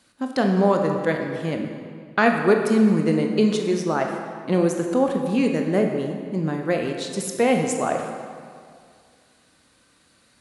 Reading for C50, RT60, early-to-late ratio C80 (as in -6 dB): 4.5 dB, 2.2 s, 5.5 dB